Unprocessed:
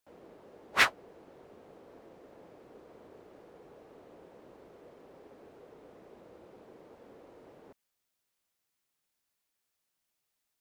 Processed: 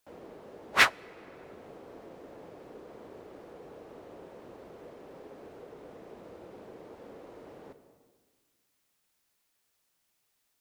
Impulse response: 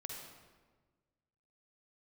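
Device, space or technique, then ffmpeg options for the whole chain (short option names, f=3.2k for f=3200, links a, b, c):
compressed reverb return: -filter_complex "[0:a]asplit=2[a][b];[1:a]atrim=start_sample=2205[c];[b][c]afir=irnorm=-1:irlink=0,acompressor=threshold=-55dB:ratio=5,volume=0dB[d];[a][d]amix=inputs=2:normalize=0,volume=2.5dB"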